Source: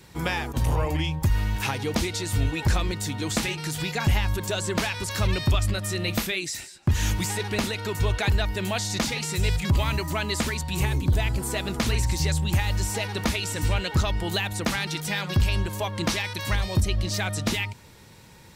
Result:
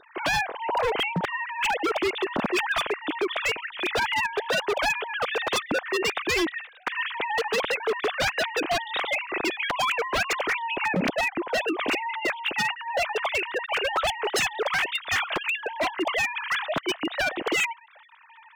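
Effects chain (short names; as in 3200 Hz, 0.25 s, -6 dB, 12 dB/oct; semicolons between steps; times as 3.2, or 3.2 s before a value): sine-wave speech; wavefolder -18.5 dBFS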